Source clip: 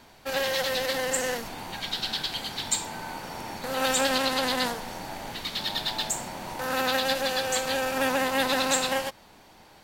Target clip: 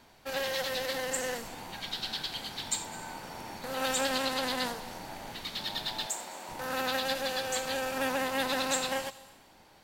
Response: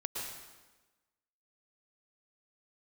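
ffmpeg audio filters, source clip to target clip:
-filter_complex "[0:a]asettb=1/sr,asplit=3[a][b][c];[a]atrim=end=6.064[d];[b]atrim=start=6.06:end=6.49,asetpts=PTS-STARTPTS,afade=t=in:d=0.004:c=qsin,afade=t=out:st=0.426:d=0.004:c=qsin,highpass=360[e];[c]atrim=start=6.486[f];[d][e]acrossfade=d=0.004:c1=hsin:c2=qsin[g];[g][f]acrossfade=d=0.004:c1=qsin:c2=hsin,asplit=2[h][i];[1:a]atrim=start_sample=2205,highshelf=f=3.4k:g=10,adelay=83[j];[i][j]afir=irnorm=-1:irlink=0,volume=-23dB[k];[h][k]amix=inputs=2:normalize=0,volume=-5.5dB"

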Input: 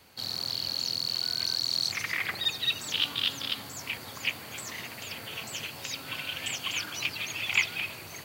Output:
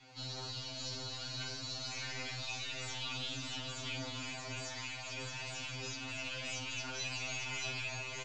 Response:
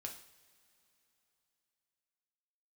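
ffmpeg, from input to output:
-filter_complex "[0:a]asettb=1/sr,asplit=3[a][b][c];[a]atrim=end=4.614[d];[b]atrim=start=4.61:end=5.16,asetpts=PTS-STARTPTS,afade=t=in:d=0.004:c=qsin,afade=t=out:st=0.546:d=0.004:c=qsin,highpass=1.2k[e];[c]atrim=start=5.156[f];[d][e]acrossfade=d=0.004:c1=hsin:c2=qsin[g];[g][f]acrossfade=d=0.004:c1=qsin:c2=hsin,asettb=1/sr,asplit=3[h][i][j];[h]atrim=end=5.814[k];[i]atrim=start=5.81:end=6.25,asetpts=PTS-STARTPTS,afade=t=in:d=0.004:c=qsin,afade=t=out:st=0.436:d=0.004:c=qsin,acompressor=threshold=-36dB:ratio=6[l];[j]atrim=start=6.246[m];[k][l]acrossfade=d=0.004:c1=hsin:c2=qsin[n];[n][m]acrossfade=d=0.004:c1=qsin:c2=hsin,aeval=exprs='(tanh(89.1*val(0)+0.1)-tanh(0.1))/89.1':c=same,flanger=delay=6.2:depth=3.6:regen=48:speed=0.55:shape=triangular,aecho=1:1:626:0.631[o];[1:a]atrim=start_sample=2205,atrim=end_sample=3969[p];[o][p]afir=irnorm=-1:irlink=0,aresample=16000,aresample=44100,afftfilt=real='re*2.45*eq(mod(b,6),0)':imag='im*2.45*eq(mod(b,6),0)':win_size=2048:overlap=0.75,volume=9.5dB"

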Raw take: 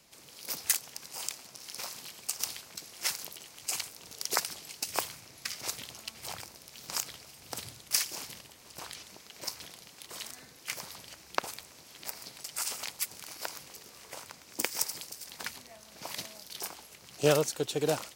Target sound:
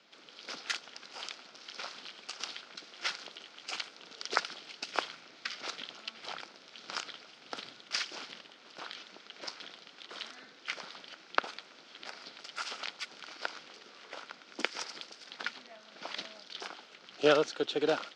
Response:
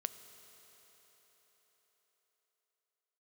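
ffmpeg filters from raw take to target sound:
-af "highpass=f=210:w=0.5412,highpass=f=210:w=1.3066,equalizer=f=990:t=q:w=4:g=-3,equalizer=f=1.4k:t=q:w=4:g=8,equalizer=f=3.3k:t=q:w=4:g=4,lowpass=f=4.7k:w=0.5412,lowpass=f=4.7k:w=1.3066"

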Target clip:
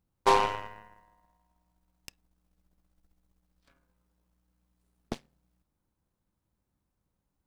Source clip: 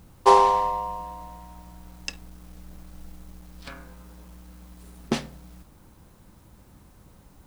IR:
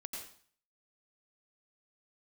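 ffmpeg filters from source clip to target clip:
-af "aeval=exprs='0.668*(cos(1*acos(clip(val(0)/0.668,-1,1)))-cos(1*PI/2))+0.0075*(cos(3*acos(clip(val(0)/0.668,-1,1)))-cos(3*PI/2))+0.0841*(cos(7*acos(clip(val(0)/0.668,-1,1)))-cos(7*PI/2))+0.0299*(cos(8*acos(clip(val(0)/0.668,-1,1)))-cos(8*PI/2))':c=same,volume=-7dB"

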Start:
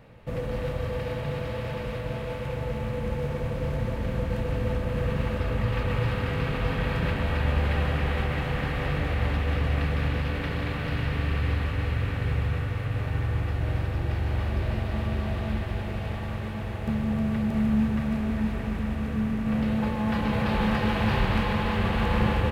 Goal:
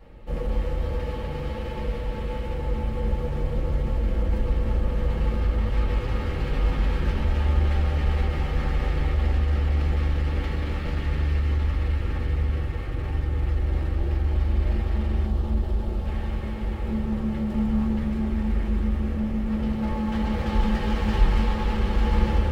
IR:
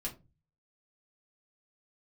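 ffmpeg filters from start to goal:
-filter_complex "[0:a]asettb=1/sr,asplit=3[a][b][c];[a]atrim=end=15.254[d];[b]atrim=start=15.25:end=16.06,asetpts=PTS-STARTPTS,afade=t=in:d=0.004:c=qsin,afade=t=out:st=0.806:d=0.004:c=qsin,equalizer=f=2.1k:t=o:w=1:g=-10[e];[c]atrim=start=16.056[f];[d][e]acrossfade=d=0.004:c1=hsin:c2=qsin[g];[g][f]acrossfade=d=0.004:c1=qsin:c2=hsin,asplit=2[h][i];[i]aeval=exprs='0.0355*(abs(mod(val(0)/0.0355+3,4)-2)-1)':c=same,volume=-4dB[j];[h][j]amix=inputs=2:normalize=0[k];[1:a]atrim=start_sample=2205,asetrate=79380,aresample=44100[l];[k][l]afir=irnorm=-1:irlink=0"

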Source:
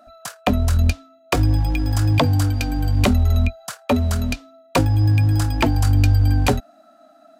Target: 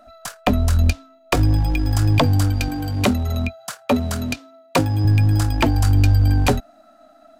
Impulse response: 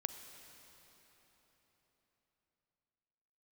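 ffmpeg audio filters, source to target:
-filter_complex "[0:a]aeval=exprs='if(lt(val(0),0),0.708*val(0),val(0))':c=same,asettb=1/sr,asplit=3[a][b][c];[a]atrim=end=2.684[d];[b]atrim=start=2.68:end=5.05,asetpts=PTS-STARTPTS,afade=t=in:d=0.004:c=qsin,afade=t=out:st=2.366:d=0.004:c=qsin,highpass=110[e];[c]atrim=start=5.046[f];[d][e]acrossfade=d=0.004:c1=hsin:c2=qsin[g];[g][f]acrossfade=d=0.004:c1=qsin:c2=hsin,volume=2dB"

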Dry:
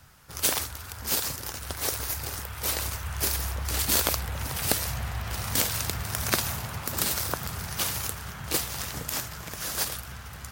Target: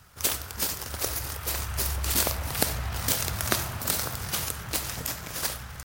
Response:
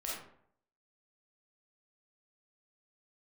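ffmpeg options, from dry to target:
-filter_complex "[0:a]aeval=exprs='0.794*(cos(1*acos(clip(val(0)/0.794,-1,1)))-cos(1*PI/2))+0.0224*(cos(3*acos(clip(val(0)/0.794,-1,1)))-cos(3*PI/2))':c=same,atempo=1.8,asplit=2[a][b];[1:a]atrim=start_sample=2205[c];[b][c]afir=irnorm=-1:irlink=0,volume=-9.5dB[d];[a][d]amix=inputs=2:normalize=0"

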